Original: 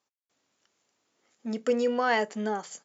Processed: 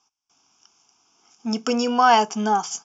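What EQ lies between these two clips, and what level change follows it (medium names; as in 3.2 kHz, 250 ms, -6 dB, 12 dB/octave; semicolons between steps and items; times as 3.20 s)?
resonant low-pass 5.5 kHz, resonance Q 4.9; peaking EQ 710 Hz +11 dB 0.98 oct; static phaser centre 2.8 kHz, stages 8; +8.5 dB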